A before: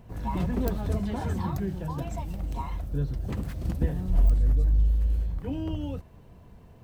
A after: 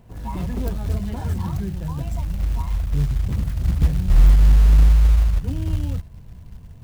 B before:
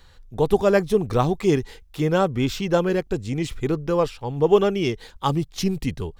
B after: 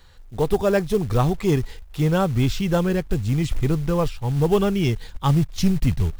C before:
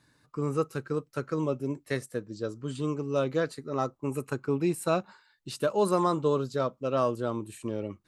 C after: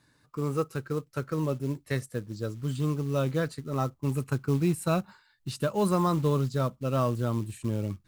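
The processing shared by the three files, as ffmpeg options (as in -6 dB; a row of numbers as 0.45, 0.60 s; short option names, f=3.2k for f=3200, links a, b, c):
-af "asubboost=boost=4.5:cutoff=180,acontrast=47,acrusher=bits=6:mode=log:mix=0:aa=0.000001,volume=-6dB"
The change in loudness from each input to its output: +8.5, +0.5, +0.5 LU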